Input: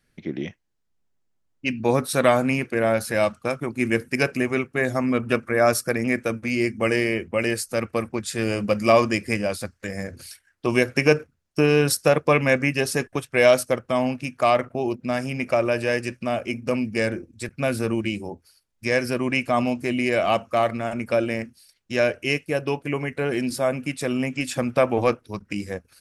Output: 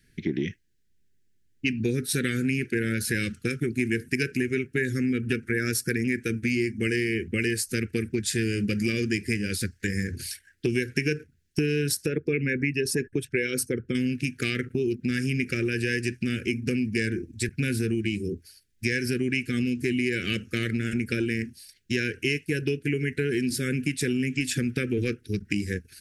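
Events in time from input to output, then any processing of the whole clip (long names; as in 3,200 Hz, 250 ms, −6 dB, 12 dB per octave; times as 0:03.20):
0:12.06–0:13.95: spectral envelope exaggerated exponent 1.5
whole clip: elliptic band-stop filter 420–1,600 Hz, stop band 40 dB; parametric band 87 Hz +3 dB 1.8 octaves; downward compressor, threshold −29 dBFS; level +6 dB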